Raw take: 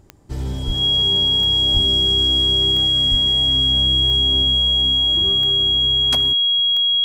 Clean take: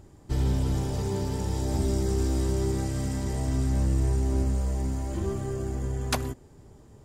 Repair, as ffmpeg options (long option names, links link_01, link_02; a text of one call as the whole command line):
ffmpeg -i in.wav -filter_complex "[0:a]adeclick=threshold=4,bandreject=frequency=3300:width=30,asplit=3[link_01][link_02][link_03];[link_01]afade=type=out:start_time=0.66:duration=0.02[link_04];[link_02]highpass=frequency=140:width=0.5412,highpass=frequency=140:width=1.3066,afade=type=in:start_time=0.66:duration=0.02,afade=type=out:start_time=0.78:duration=0.02[link_05];[link_03]afade=type=in:start_time=0.78:duration=0.02[link_06];[link_04][link_05][link_06]amix=inputs=3:normalize=0,asplit=3[link_07][link_08][link_09];[link_07]afade=type=out:start_time=1.73:duration=0.02[link_10];[link_08]highpass=frequency=140:width=0.5412,highpass=frequency=140:width=1.3066,afade=type=in:start_time=1.73:duration=0.02,afade=type=out:start_time=1.85:duration=0.02[link_11];[link_09]afade=type=in:start_time=1.85:duration=0.02[link_12];[link_10][link_11][link_12]amix=inputs=3:normalize=0,asplit=3[link_13][link_14][link_15];[link_13]afade=type=out:start_time=3.1:duration=0.02[link_16];[link_14]highpass=frequency=140:width=0.5412,highpass=frequency=140:width=1.3066,afade=type=in:start_time=3.1:duration=0.02,afade=type=out:start_time=3.22:duration=0.02[link_17];[link_15]afade=type=in:start_time=3.22:duration=0.02[link_18];[link_16][link_17][link_18]amix=inputs=3:normalize=0" out.wav